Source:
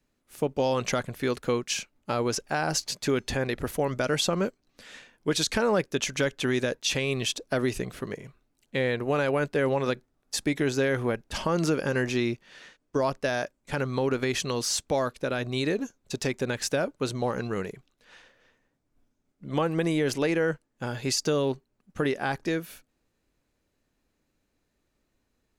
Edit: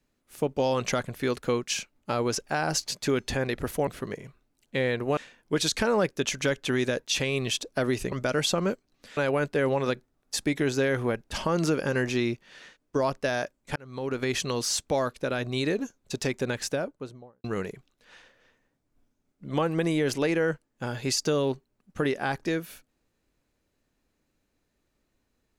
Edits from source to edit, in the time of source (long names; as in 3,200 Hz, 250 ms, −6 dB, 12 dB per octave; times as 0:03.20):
0:03.87–0:04.92: swap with 0:07.87–0:09.17
0:13.76–0:14.31: fade in
0:16.47–0:17.44: fade out and dull